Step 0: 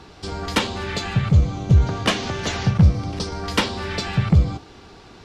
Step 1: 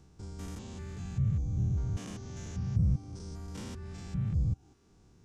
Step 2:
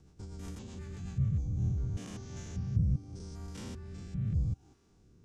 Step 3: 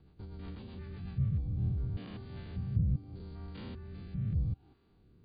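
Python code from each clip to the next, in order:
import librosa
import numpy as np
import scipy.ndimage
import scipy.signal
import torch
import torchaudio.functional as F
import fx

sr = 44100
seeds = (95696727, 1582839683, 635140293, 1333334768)

y1 = fx.spec_steps(x, sr, hold_ms=200)
y1 = fx.dereverb_blind(y1, sr, rt60_s=0.6)
y1 = fx.curve_eq(y1, sr, hz=(150.0, 620.0, 4300.0, 6300.0), db=(0, -14, -17, -3))
y1 = y1 * librosa.db_to_amplitude(-7.0)
y2 = fx.rotary_switch(y1, sr, hz=8.0, then_hz=0.85, switch_at_s=1.01)
y3 = fx.brickwall_lowpass(y2, sr, high_hz=4800.0)
y3 = y3 * librosa.db_to_amplitude(-1.0)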